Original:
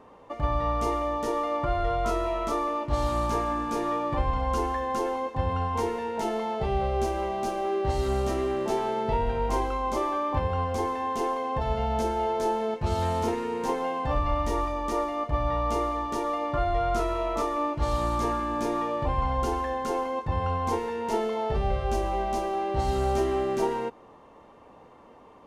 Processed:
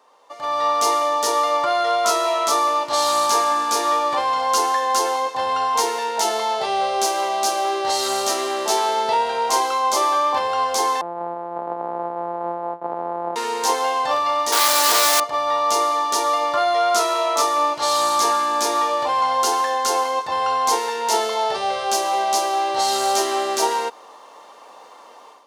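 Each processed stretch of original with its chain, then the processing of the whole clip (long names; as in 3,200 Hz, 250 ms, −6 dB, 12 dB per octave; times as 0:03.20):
0:11.01–0:13.36: samples sorted by size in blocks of 256 samples + elliptic band-pass filter 150–850 Hz, stop band 80 dB + tilt shelving filter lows −5 dB, about 640 Hz
0:14.52–0:15.20: high shelf with overshoot 3,100 Hz −6.5 dB, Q 1.5 + log-companded quantiser 2 bits
whole clip: high-pass filter 740 Hz 12 dB per octave; high shelf with overshoot 3,300 Hz +7.5 dB, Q 1.5; automatic gain control gain up to 12.5 dB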